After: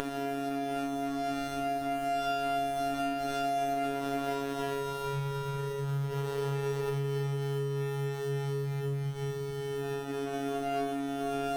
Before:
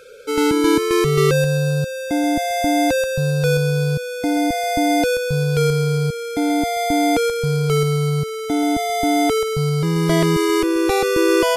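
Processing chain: Paulstretch 4.8×, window 0.50 s, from 6.31 s; compression, threshold -19 dBFS, peak gain reduction 9 dB; robot voice 139 Hz; graphic EQ 125/250/500/1000/4000/8000 Hz -8/-12/-3/-11/-8/-7 dB; sliding maximum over 17 samples

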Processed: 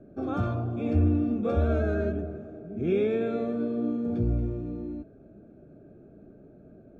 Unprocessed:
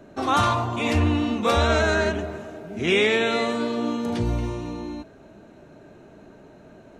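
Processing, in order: boxcar filter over 45 samples; trim -1 dB

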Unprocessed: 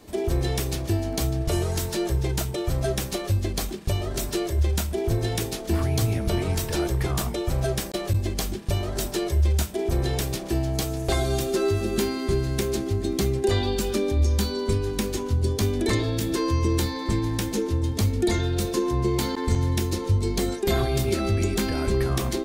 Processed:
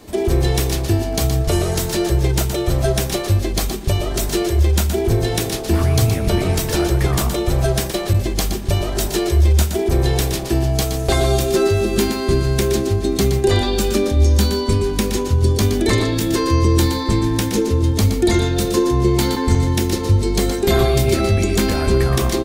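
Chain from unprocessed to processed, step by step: delay 120 ms -8 dB; trim +7 dB

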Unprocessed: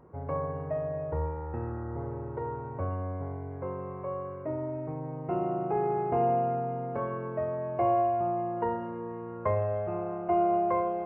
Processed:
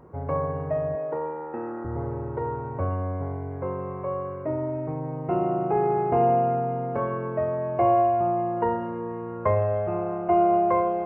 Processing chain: 0.95–1.85 s: high-pass 210 Hz 24 dB/octave; trim +5.5 dB

